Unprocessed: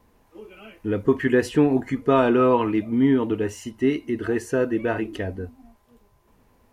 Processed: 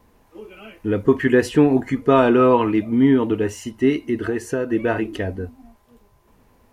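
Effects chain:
0:04.28–0:04.70: downward compressor 4 to 1, threshold −23 dBFS, peak gain reduction 6 dB
level +3.5 dB

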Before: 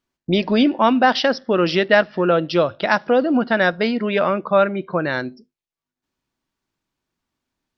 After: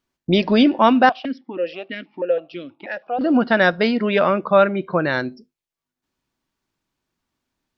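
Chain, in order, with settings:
0:01.09–0:03.21: formant filter that steps through the vowels 6.2 Hz
level +1.5 dB

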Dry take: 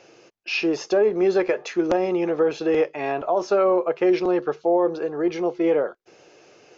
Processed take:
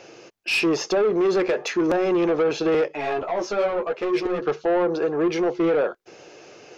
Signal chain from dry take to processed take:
brickwall limiter −15 dBFS, peak gain reduction 4 dB
soft clipping −22 dBFS, distortion −13 dB
0:02.88–0:04.42: string-ensemble chorus
level +6 dB

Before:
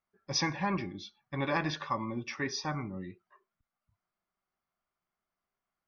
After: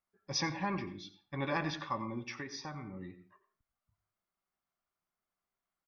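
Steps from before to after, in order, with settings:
single-tap delay 88 ms −17.5 dB
convolution reverb, pre-delay 98 ms, DRR 15 dB
0:02.37–0:03.01: downward compressor 6 to 1, threshold −36 dBFS, peak gain reduction 8 dB
level −3.5 dB

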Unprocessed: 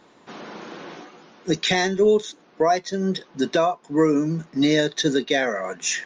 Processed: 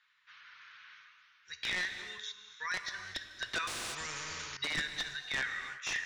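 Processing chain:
sub-octave generator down 1 octave, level +2 dB
inverse Chebyshev high-pass filter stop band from 750 Hz, stop band 40 dB
high-shelf EQ 6,000 Hz −11.5 dB
speech leveller within 4 dB 0.5 s
wrap-around overflow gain 20.5 dB
high-frequency loss of the air 120 metres
reverb whose tail is shaped and stops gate 380 ms flat, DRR 7 dB
0:03.67–0:04.57: every bin compressed towards the loudest bin 4 to 1
level −2.5 dB

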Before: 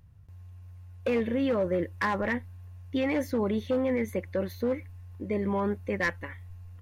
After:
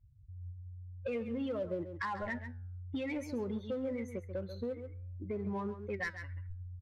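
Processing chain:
spectral dynamics exaggerated over time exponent 2
in parallel at −7.5 dB: hard clipping −37 dBFS, distortion −5 dB
on the sum: low-pass that shuts in the quiet parts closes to 1,900 Hz, open at −25 dBFS
on a send: single-tap delay 136 ms −13 dB
on the sum: downward compressor 2.5 to 1, threshold −42 dBFS, peak gain reduction 11.5 dB
flanger 0.51 Hz, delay 6.9 ms, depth 9.5 ms, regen +86%
level +7 dB

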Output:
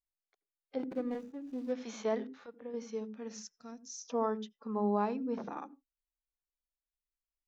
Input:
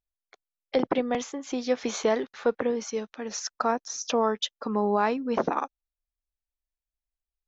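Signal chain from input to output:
0:00.79–0:01.72: running median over 41 samples
0:02.26–0:02.74: downward compressor 5 to 1, threshold −33 dBFS, peak gain reduction 13 dB
0:03.43–0:04.00: drawn EQ curve 120 Hz 0 dB, 880 Hz −23 dB, 6,000 Hz +5 dB
harmonic and percussive parts rebalanced percussive −15 dB
on a send: convolution reverb, pre-delay 76 ms, DRR 23 dB
on the sum: level −7.5 dB

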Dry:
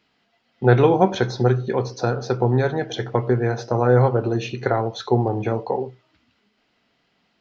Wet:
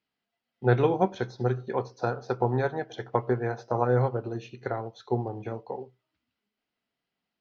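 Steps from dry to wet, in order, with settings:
0:01.57–0:03.85: parametric band 940 Hz +6.5 dB 1.8 octaves
expander for the loud parts 1.5 to 1, over −36 dBFS
level −6.5 dB

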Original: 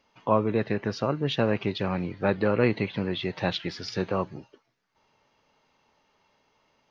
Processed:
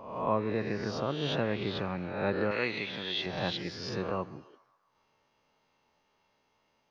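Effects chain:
peak hold with a rise ahead of every peak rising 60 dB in 0.82 s
0:02.51–0:03.26: spectral tilt +3.5 dB per octave
feedback echo with a band-pass in the loop 136 ms, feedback 62%, band-pass 1,200 Hz, level −20 dB
level −7.5 dB

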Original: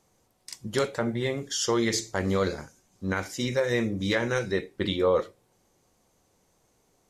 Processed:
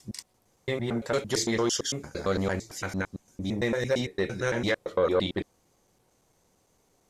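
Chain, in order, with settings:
slices reordered back to front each 113 ms, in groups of 6
saturating transformer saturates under 390 Hz

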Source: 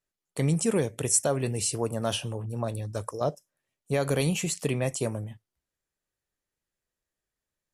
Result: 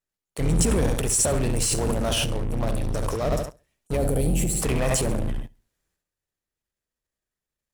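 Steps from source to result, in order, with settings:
sub-octave generator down 2 octaves, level +2 dB
0:04.50–0:04.92: parametric band 1,100 Hz +10 dB 1.2 octaves
flutter between parallel walls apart 11.7 metres, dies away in 0.4 s
transient designer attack −4 dB, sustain +11 dB
in parallel at −12 dB: fuzz pedal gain 37 dB, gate −43 dBFS
0:03.97–0:04.63: on the sum: gain on a spectral selection 860–7,400 Hz −11 dB
level −3 dB

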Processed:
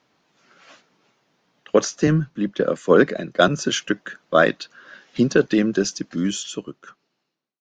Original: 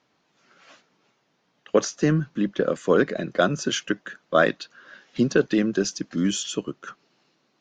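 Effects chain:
fade-out on the ending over 1.84 s
0:02.07–0:03.48: multiband upward and downward expander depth 70%
level +3 dB

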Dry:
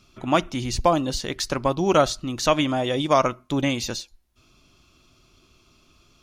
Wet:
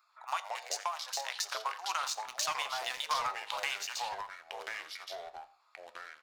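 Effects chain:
adaptive Wiener filter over 15 samples
Butterworth high-pass 890 Hz 36 dB per octave
high-shelf EQ 8,900 Hz +9.5 dB
notch filter 3,300 Hz, Q 13
0:02.03–0:03.78: leveller curve on the samples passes 2
downward compressor 6 to 1, threshold −32 dBFS, peak gain reduction 15.5 dB
flanger 0.44 Hz, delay 7.5 ms, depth 1.3 ms, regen +76%
delay with pitch and tempo change per echo 94 ms, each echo −4 semitones, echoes 2, each echo −6 dB
single-tap delay 86 ms −19.5 dB
convolution reverb RT60 0.60 s, pre-delay 4 ms, DRR 18.5 dB
level +4 dB

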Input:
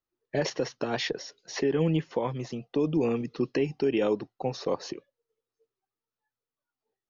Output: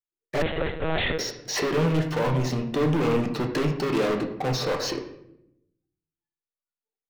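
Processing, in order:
leveller curve on the samples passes 5
on a send at −3 dB: convolution reverb RT60 0.80 s, pre-delay 7 ms
0:00.42–0:01.19: on the sum: one-pitch LPC vocoder at 8 kHz 160 Hz
level −7 dB

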